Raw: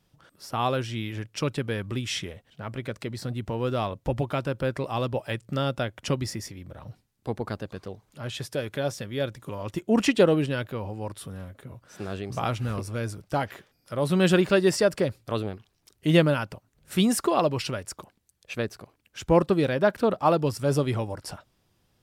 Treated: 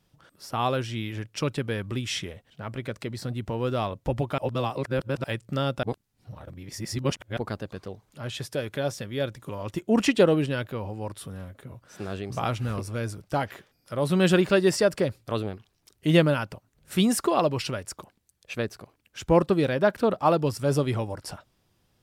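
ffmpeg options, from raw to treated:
-filter_complex "[0:a]asplit=5[s0][s1][s2][s3][s4];[s0]atrim=end=4.382[s5];[s1]atrim=start=4.378:end=5.242,asetpts=PTS-STARTPTS,areverse[s6];[s2]atrim=start=5.238:end=5.832[s7];[s3]atrim=start=5.828:end=7.372,asetpts=PTS-STARTPTS,areverse[s8];[s4]atrim=start=7.368[s9];[s5][s6]acrossfade=d=0.004:c1=hsin:c2=hsin[s10];[s10][s7]acrossfade=d=0.004:c1=hsin:c2=hsin[s11];[s11][s8]acrossfade=d=0.004:c1=hsin:c2=hsin[s12];[s12][s9]acrossfade=d=0.004:c1=hsin:c2=hsin"

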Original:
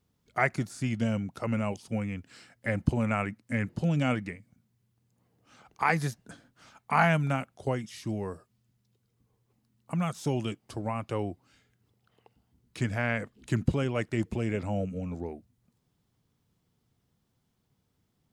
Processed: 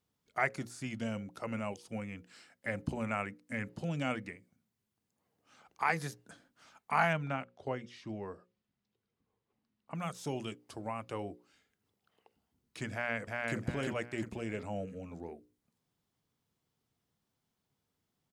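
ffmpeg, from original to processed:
-filter_complex "[0:a]asettb=1/sr,asplit=3[s0][s1][s2];[s0]atrim=end=7.134[s3];[s1]atrim=start=7.13:end=9.95,asetpts=PTS-STARTPTS,afade=t=in:d=0.004:c=qsin,afade=t=out:st=2.816:d=0.004:c=qsin,lowpass=3800[s4];[s2]atrim=start=9.946[s5];[s3][s4]acrossfade=d=0.004:c1=hsin:c2=qsin[s6];[s6][s5]acrossfade=d=0.004:c1=qsin:c2=hsin,asplit=2[s7][s8];[s8]afade=t=in:st=12.92:d=0.01,afade=t=out:st=13.58:d=0.01,aecho=0:1:350|700|1050|1400|1750:0.841395|0.294488|0.103071|0.0360748|0.0126262[s9];[s7][s9]amix=inputs=2:normalize=0,lowshelf=f=190:g=-9,bandreject=f=60:t=h:w=6,bandreject=f=120:t=h:w=6,bandreject=f=180:t=h:w=6,bandreject=f=240:t=h:w=6,bandreject=f=300:t=h:w=6,bandreject=f=360:t=h:w=6,bandreject=f=420:t=h:w=6,bandreject=f=480:t=h:w=6,bandreject=f=540:t=h:w=6,volume=0.596"

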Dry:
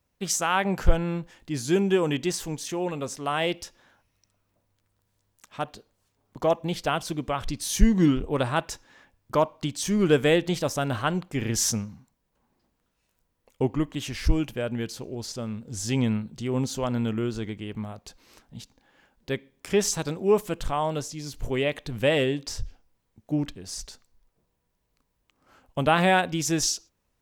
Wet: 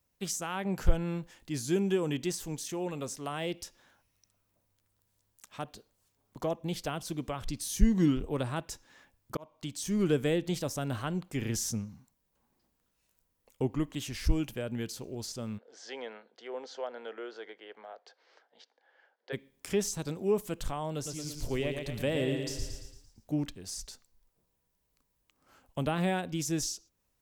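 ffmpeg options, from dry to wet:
-filter_complex "[0:a]asplit=3[s0][s1][s2];[s0]afade=t=out:st=15.57:d=0.02[s3];[s1]highpass=f=470:w=0.5412,highpass=f=470:w=1.3066,equalizer=f=470:t=q:w=4:g=4,equalizer=f=720:t=q:w=4:g=3,equalizer=f=1100:t=q:w=4:g=-5,equalizer=f=1600:t=q:w=4:g=4,equalizer=f=2600:t=q:w=4:g=-9,equalizer=f=3800:t=q:w=4:g=-6,lowpass=f=4000:w=0.5412,lowpass=f=4000:w=1.3066,afade=t=in:st=15.57:d=0.02,afade=t=out:st=19.32:d=0.02[s4];[s2]afade=t=in:st=19.32:d=0.02[s5];[s3][s4][s5]amix=inputs=3:normalize=0,asettb=1/sr,asplit=3[s6][s7][s8];[s6]atrim=end=20.944[s9];[s7]atrim=start=20.94:end=23.32,asetpts=PTS-STARTPTS,afade=t=in:d=0.004:c=qsin,afade=t=out:st=2.376:d=0.004:c=qsin,aecho=1:1:113|226|339|452|565|678:0.501|0.236|0.111|0.052|0.0245|0.0115,atrim=end_sample=104958[s10];[s8]atrim=start=23.316[s11];[s9][s10]acrossfade=d=0.004:c1=hsin:c2=qsin[s12];[s12][s11]acrossfade=d=0.004:c1=qsin:c2=hsin,asplit=2[s13][s14];[s13]atrim=end=9.37,asetpts=PTS-STARTPTS,afade=t=out:st=9.366:d=0.004:c=hsin[s15];[s14]atrim=start=9.37,asetpts=PTS-STARTPTS,afade=t=in:d=0.74:c=qsin[s16];[s15][s16]concat=n=2:v=0:a=1,highshelf=f=5600:g=8.5,acrossover=split=440[s17][s18];[s18]acompressor=threshold=0.0178:ratio=2[s19];[s17][s19]amix=inputs=2:normalize=0,volume=0.562"

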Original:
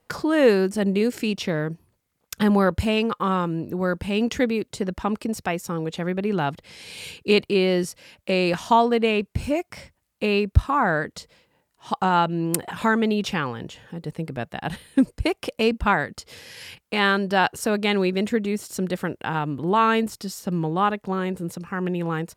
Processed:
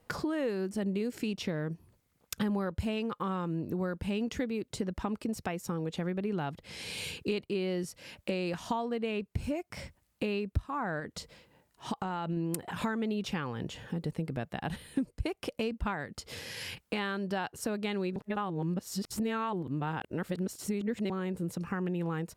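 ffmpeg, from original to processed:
-filter_complex "[0:a]asettb=1/sr,asplit=3[s0][s1][s2];[s0]atrim=end=10.994[s3];[s1]atrim=start=10.99:end=12.37,asetpts=PTS-STARTPTS,afade=t=in:d=0.004:c=qsin,afade=t=out:st=1.376:d=0.004:c=qsin,acompressor=threshold=0.0708:ratio=6:attack=3.2:release=140:knee=1:detection=peak[s4];[s2]atrim=start=12.366[s5];[s3][s4]acrossfade=d=0.004:c1=hsin:c2=qsin[s6];[s6][s5]acrossfade=d=0.004:c1=qsin:c2=hsin,asplit=3[s7][s8][s9];[s7]atrim=end=18.162[s10];[s8]atrim=start=18.158:end=21.102,asetpts=PTS-STARTPTS,areverse[s11];[s9]atrim=start=21.098[s12];[s10][s11]acrossfade=d=0.004:c1=hsin:c2=hsin[s13];[s13][s12]acrossfade=d=0.004:c1=hsin:c2=hsin,acompressor=threshold=0.0178:ratio=4,lowshelf=f=370:g=4.5"

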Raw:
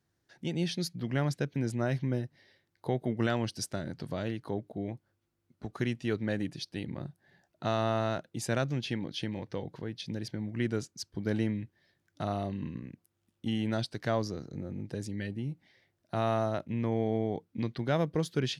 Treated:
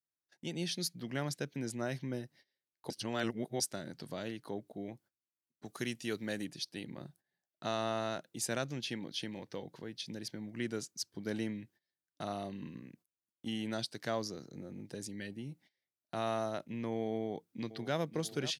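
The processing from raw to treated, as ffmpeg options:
-filter_complex "[0:a]asettb=1/sr,asplit=3[s0][s1][s2];[s0]atrim=end=5.654[s3];[s1]atrim=start=5.65:end=6.45,asetpts=PTS-STARTPTS,afade=t=in:d=0.004:c=qsin,afade=t=out:st=0.796:d=0.004:c=qsin,aemphasis=mode=production:type=cd[s4];[s2]atrim=start=6.446[s5];[s3][s4]acrossfade=d=0.004:c1=hsin:c2=qsin[s6];[s6][s5]acrossfade=d=0.004:c1=qsin:c2=hsin,asplit=2[s7][s8];[s8]afade=t=in:st=17.17:d=0.01,afade=t=out:st=17.97:d=0.01,aecho=0:1:530|1060|1590|2120|2650|3180|3710|4240|4770|5300|5830:0.211349|0.158512|0.118884|0.0891628|0.0668721|0.0501541|0.0376156|0.0282117|0.0211588|0.0158691|0.0119018[s9];[s7][s9]amix=inputs=2:normalize=0,asplit=3[s10][s11][s12];[s10]atrim=end=2.902[s13];[s11]atrim=start=2.898:end=3.602,asetpts=PTS-STARTPTS,areverse[s14];[s12]atrim=start=3.598[s15];[s13][s14]acrossfade=d=0.004:c1=hsin:c2=hsin[s16];[s16][s15]acrossfade=d=0.004:c1=hsin:c2=hsin,highpass=160,agate=range=0.1:threshold=0.00158:ratio=16:detection=peak,highshelf=f=4200:g=11,volume=0.531"

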